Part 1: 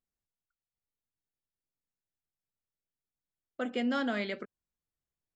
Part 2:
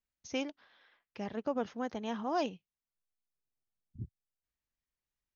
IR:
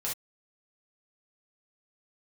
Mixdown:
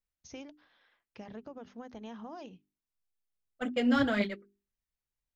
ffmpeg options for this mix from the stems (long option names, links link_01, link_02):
-filter_complex "[0:a]agate=range=-30dB:threshold=-33dB:ratio=16:detection=peak,aphaser=in_gain=1:out_gain=1:delay=4.8:decay=0.49:speed=1.9:type=triangular,volume=1.5dB[link_01];[1:a]alimiter=level_in=5dB:limit=-24dB:level=0:latency=1:release=251,volume=-5dB,acompressor=threshold=-39dB:ratio=4,volume=-3.5dB[link_02];[link_01][link_02]amix=inputs=2:normalize=0,lowshelf=frequency=150:gain=8.5,bandreject=frequency=50:width_type=h:width=6,bandreject=frequency=100:width_type=h:width=6,bandreject=frequency=150:width_type=h:width=6,bandreject=frequency=200:width_type=h:width=6,bandreject=frequency=250:width_type=h:width=6,bandreject=frequency=300:width_type=h:width=6,bandreject=frequency=350:width_type=h:width=6,bandreject=frequency=400:width_type=h:width=6"